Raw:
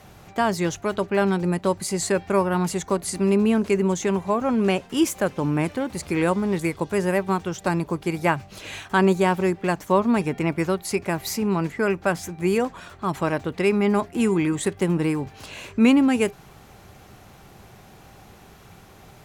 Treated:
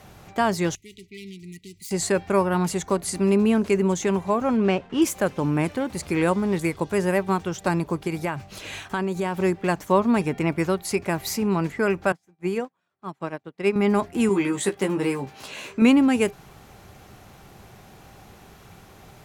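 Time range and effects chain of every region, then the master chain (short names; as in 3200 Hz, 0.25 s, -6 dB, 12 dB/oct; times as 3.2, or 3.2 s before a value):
0.75–1.91 self-modulated delay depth 0.1 ms + brick-wall FIR band-stop 450–1900 Hz + passive tone stack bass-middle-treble 5-5-5
4.57–5.02 median filter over 9 samples + LPF 4700 Hz
8.07–9.4 compressor 5:1, threshold -22 dBFS + mismatched tape noise reduction encoder only
12.12–13.76 HPF 120 Hz 24 dB/oct + high shelf 6600 Hz -7 dB + upward expander 2.5:1, over -40 dBFS
14.29–15.82 HPF 240 Hz 6 dB/oct + doubler 15 ms -4 dB
whole clip: dry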